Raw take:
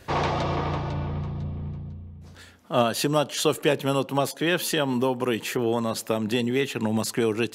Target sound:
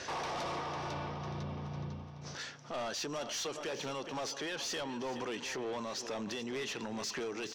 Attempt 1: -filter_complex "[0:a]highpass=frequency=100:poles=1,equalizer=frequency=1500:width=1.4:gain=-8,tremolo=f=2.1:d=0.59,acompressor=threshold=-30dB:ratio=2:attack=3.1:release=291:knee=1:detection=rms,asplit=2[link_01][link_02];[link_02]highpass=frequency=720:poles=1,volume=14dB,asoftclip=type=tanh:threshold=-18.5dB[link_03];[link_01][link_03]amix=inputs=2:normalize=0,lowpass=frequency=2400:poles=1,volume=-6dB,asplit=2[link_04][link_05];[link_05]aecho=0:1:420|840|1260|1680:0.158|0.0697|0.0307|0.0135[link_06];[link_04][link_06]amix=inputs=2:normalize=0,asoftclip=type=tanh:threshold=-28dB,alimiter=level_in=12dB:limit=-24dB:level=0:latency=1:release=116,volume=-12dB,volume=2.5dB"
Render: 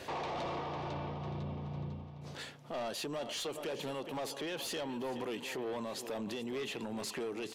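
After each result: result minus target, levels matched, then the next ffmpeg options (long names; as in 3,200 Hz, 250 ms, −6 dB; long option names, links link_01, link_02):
8,000 Hz band −4.0 dB; 2,000 Hz band −2.5 dB
-filter_complex "[0:a]highpass=frequency=100:poles=1,equalizer=frequency=1500:width=1.4:gain=-8,tremolo=f=2.1:d=0.59,acompressor=threshold=-30dB:ratio=2:attack=3.1:release=291:knee=1:detection=rms,lowpass=frequency=5800:width_type=q:width=5.7,asplit=2[link_01][link_02];[link_02]highpass=frequency=720:poles=1,volume=14dB,asoftclip=type=tanh:threshold=-18.5dB[link_03];[link_01][link_03]amix=inputs=2:normalize=0,lowpass=frequency=2400:poles=1,volume=-6dB,asplit=2[link_04][link_05];[link_05]aecho=0:1:420|840|1260|1680:0.158|0.0697|0.0307|0.0135[link_06];[link_04][link_06]amix=inputs=2:normalize=0,asoftclip=type=tanh:threshold=-28dB,alimiter=level_in=12dB:limit=-24dB:level=0:latency=1:release=116,volume=-12dB,volume=2.5dB"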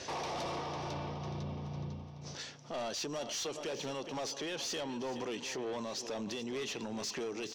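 2,000 Hz band −3.0 dB
-filter_complex "[0:a]highpass=frequency=100:poles=1,tremolo=f=2.1:d=0.59,acompressor=threshold=-30dB:ratio=2:attack=3.1:release=291:knee=1:detection=rms,lowpass=frequency=5800:width_type=q:width=5.7,asplit=2[link_01][link_02];[link_02]highpass=frequency=720:poles=1,volume=14dB,asoftclip=type=tanh:threshold=-18.5dB[link_03];[link_01][link_03]amix=inputs=2:normalize=0,lowpass=frequency=2400:poles=1,volume=-6dB,asplit=2[link_04][link_05];[link_05]aecho=0:1:420|840|1260|1680:0.158|0.0697|0.0307|0.0135[link_06];[link_04][link_06]amix=inputs=2:normalize=0,asoftclip=type=tanh:threshold=-28dB,alimiter=level_in=12dB:limit=-24dB:level=0:latency=1:release=116,volume=-12dB,volume=2.5dB"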